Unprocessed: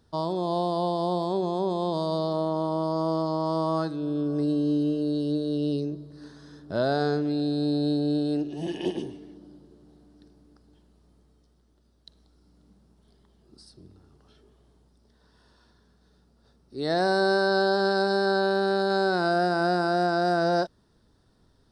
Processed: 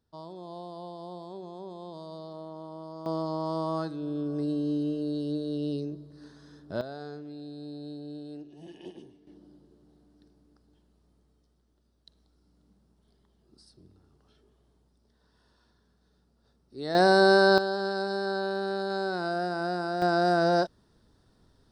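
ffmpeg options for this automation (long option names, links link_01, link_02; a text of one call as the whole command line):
ffmpeg -i in.wav -af "asetnsamples=nb_out_samples=441:pad=0,asendcmd='3.06 volume volume -4.5dB;6.81 volume volume -15.5dB;9.27 volume volume -6dB;16.95 volume volume 3.5dB;17.58 volume volume -6.5dB;20.02 volume volume 0dB',volume=-15dB" out.wav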